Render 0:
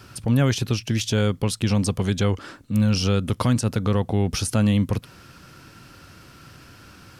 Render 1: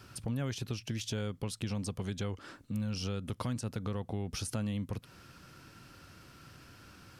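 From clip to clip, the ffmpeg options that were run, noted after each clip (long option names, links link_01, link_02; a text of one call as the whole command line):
ffmpeg -i in.wav -af "acompressor=threshold=-27dB:ratio=2.5,volume=-8dB" out.wav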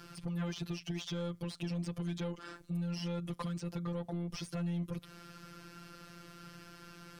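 ffmpeg -i in.wav -filter_complex "[0:a]afftfilt=real='hypot(re,im)*cos(PI*b)':imag='0':win_size=1024:overlap=0.75,asoftclip=type=tanh:threshold=-36dB,acrossover=split=5200[link_01][link_02];[link_02]acompressor=threshold=-59dB:ratio=4:attack=1:release=60[link_03];[link_01][link_03]amix=inputs=2:normalize=0,volume=6dB" out.wav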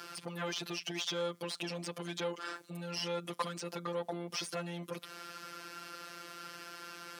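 ffmpeg -i in.wav -af "highpass=430,volume=7.5dB" out.wav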